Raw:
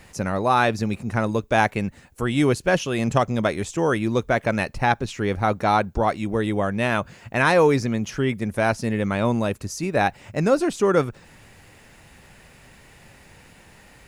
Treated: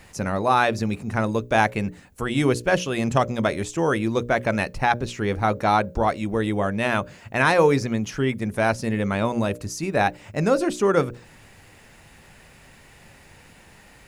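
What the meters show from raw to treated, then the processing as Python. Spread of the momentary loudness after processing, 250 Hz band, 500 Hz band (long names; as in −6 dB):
7 LU, −1.0 dB, −0.5 dB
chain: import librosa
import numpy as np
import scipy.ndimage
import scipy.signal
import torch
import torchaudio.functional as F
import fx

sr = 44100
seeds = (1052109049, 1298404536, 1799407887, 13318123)

y = fx.hum_notches(x, sr, base_hz=60, count=10)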